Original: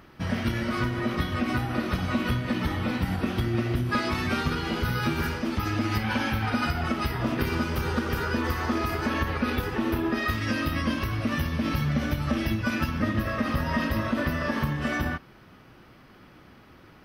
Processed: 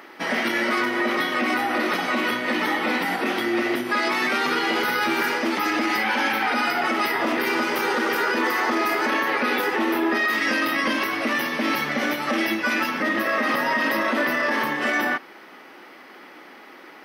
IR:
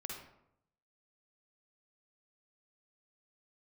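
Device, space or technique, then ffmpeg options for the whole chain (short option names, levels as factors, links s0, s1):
laptop speaker: -af "highpass=f=290:w=0.5412,highpass=f=290:w=1.3066,equalizer=f=840:t=o:w=0.22:g=5,equalizer=f=2000:t=o:w=0.34:g=7,alimiter=limit=0.075:level=0:latency=1:release=12,volume=2.66"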